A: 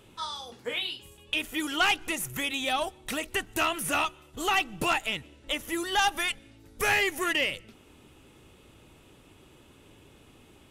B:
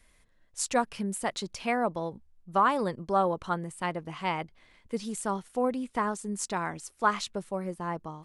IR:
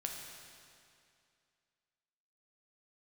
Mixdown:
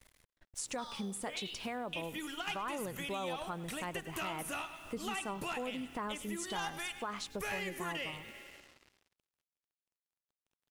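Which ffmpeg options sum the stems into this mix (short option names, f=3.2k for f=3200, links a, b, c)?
-filter_complex "[0:a]adelay=600,volume=-5.5dB,asplit=3[a][b][c];[b]volume=-9.5dB[d];[c]volume=-12dB[e];[1:a]alimiter=limit=-21dB:level=0:latency=1,volume=1dB,asplit=3[f][g][h];[g]volume=-21dB[i];[h]apad=whole_len=498691[j];[a][j]sidechaingate=range=-33dB:threshold=-54dB:ratio=16:detection=peak[k];[2:a]atrim=start_sample=2205[l];[d][l]afir=irnorm=-1:irlink=0[m];[e][i]amix=inputs=2:normalize=0,aecho=0:1:102:1[n];[k][f][m][n]amix=inputs=4:normalize=0,acrusher=bits=8:mix=0:aa=0.5,acompressor=threshold=-41dB:ratio=2.5"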